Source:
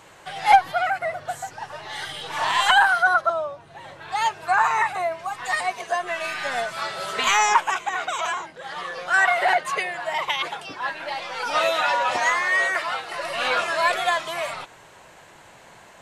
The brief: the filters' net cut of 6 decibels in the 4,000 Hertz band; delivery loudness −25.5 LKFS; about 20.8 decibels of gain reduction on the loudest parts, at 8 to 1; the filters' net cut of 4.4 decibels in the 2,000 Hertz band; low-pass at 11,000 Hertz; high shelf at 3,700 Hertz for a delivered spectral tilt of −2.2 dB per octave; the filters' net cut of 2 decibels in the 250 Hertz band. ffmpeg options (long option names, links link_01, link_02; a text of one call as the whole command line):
ffmpeg -i in.wav -af "lowpass=11000,equalizer=frequency=250:width_type=o:gain=-3,equalizer=frequency=2000:width_type=o:gain=-4,highshelf=frequency=3700:gain=-5.5,equalizer=frequency=4000:width_type=o:gain=-3,acompressor=threshold=-32dB:ratio=8,volume=10dB" out.wav